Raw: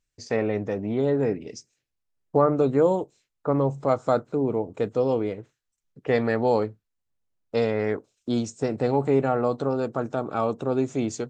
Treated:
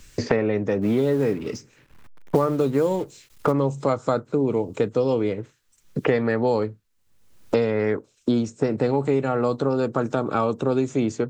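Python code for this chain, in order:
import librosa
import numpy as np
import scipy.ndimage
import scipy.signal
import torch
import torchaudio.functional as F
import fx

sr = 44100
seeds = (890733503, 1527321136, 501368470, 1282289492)

y = fx.law_mismatch(x, sr, coded='mu', at=(0.81, 3.51), fade=0.02)
y = fx.peak_eq(y, sr, hz=710.0, db=-6.0, octaves=0.39)
y = fx.band_squash(y, sr, depth_pct=100)
y = y * librosa.db_to_amplitude(2.0)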